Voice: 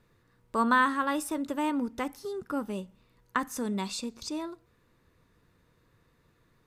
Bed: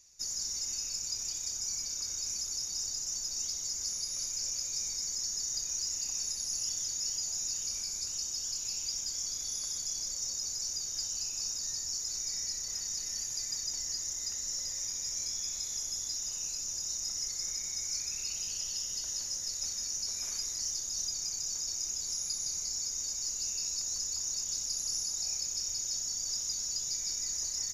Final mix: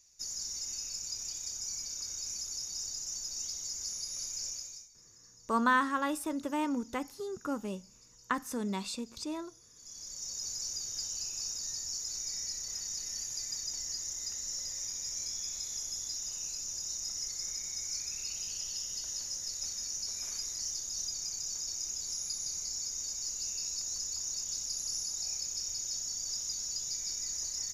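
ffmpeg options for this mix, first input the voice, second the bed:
ffmpeg -i stem1.wav -i stem2.wav -filter_complex "[0:a]adelay=4950,volume=-3dB[link_01];[1:a]volume=18.5dB,afade=type=out:start_time=4.45:duration=0.43:silence=0.0944061,afade=type=in:start_time=9.74:duration=0.74:silence=0.0841395[link_02];[link_01][link_02]amix=inputs=2:normalize=0" out.wav

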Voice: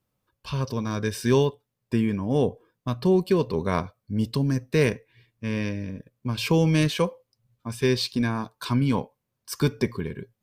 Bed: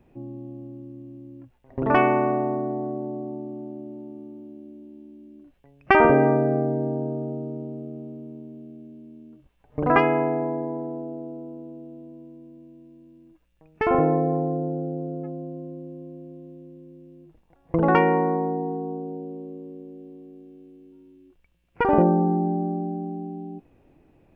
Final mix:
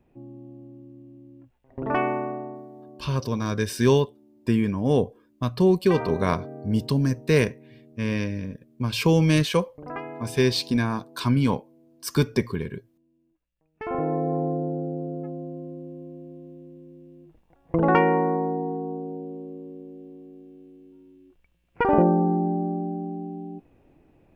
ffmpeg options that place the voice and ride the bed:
ffmpeg -i stem1.wav -i stem2.wav -filter_complex "[0:a]adelay=2550,volume=1.5dB[link_01];[1:a]volume=10.5dB,afade=type=out:start_time=2.08:duration=0.61:silence=0.281838,afade=type=in:start_time=13.72:duration=0.74:silence=0.158489[link_02];[link_01][link_02]amix=inputs=2:normalize=0" out.wav

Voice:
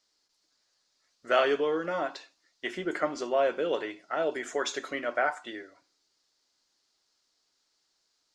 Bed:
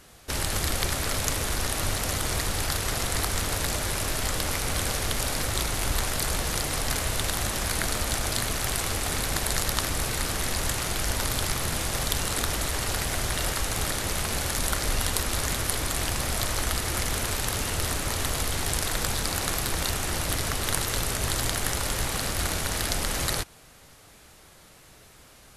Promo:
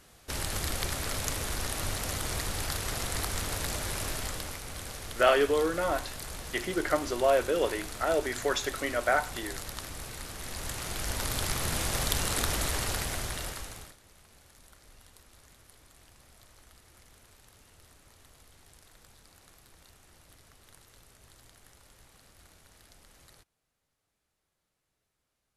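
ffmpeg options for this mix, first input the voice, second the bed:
ffmpeg -i stem1.wav -i stem2.wav -filter_complex "[0:a]adelay=3900,volume=1.5dB[link_01];[1:a]volume=5.5dB,afade=type=out:start_time=4.08:duration=0.53:silence=0.421697,afade=type=in:start_time=10.36:duration=1.47:silence=0.281838,afade=type=out:start_time=12.7:duration=1.26:silence=0.0398107[link_02];[link_01][link_02]amix=inputs=2:normalize=0" out.wav

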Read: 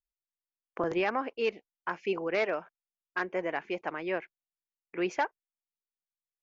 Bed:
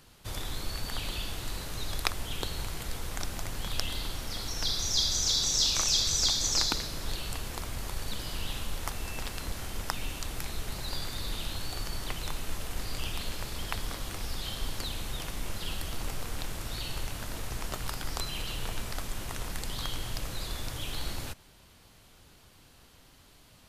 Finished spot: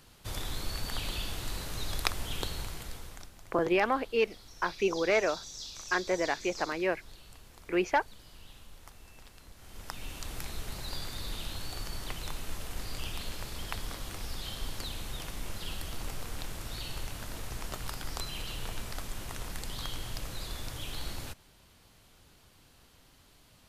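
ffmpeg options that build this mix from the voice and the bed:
ffmpeg -i stem1.wav -i stem2.wav -filter_complex "[0:a]adelay=2750,volume=2.5dB[link_01];[1:a]volume=13.5dB,afade=type=out:start_time=2.4:duration=0.91:silence=0.149624,afade=type=in:start_time=9.57:duration=0.76:silence=0.199526[link_02];[link_01][link_02]amix=inputs=2:normalize=0" out.wav

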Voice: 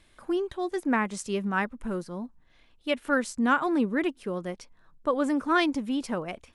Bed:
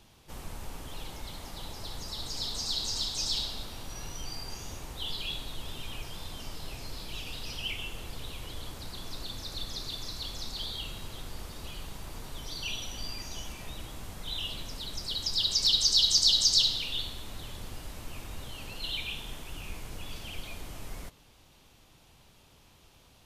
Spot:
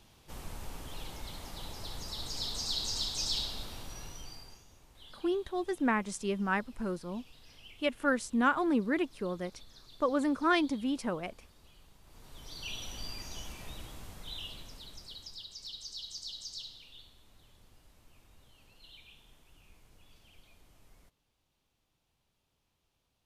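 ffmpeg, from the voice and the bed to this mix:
ffmpeg -i stem1.wav -i stem2.wav -filter_complex "[0:a]adelay=4950,volume=-3.5dB[link_01];[1:a]volume=13dB,afade=type=out:start_time=3.73:duration=0.92:silence=0.149624,afade=type=in:start_time=12.03:duration=0.85:silence=0.177828,afade=type=out:start_time=13.72:duration=1.76:silence=0.149624[link_02];[link_01][link_02]amix=inputs=2:normalize=0" out.wav

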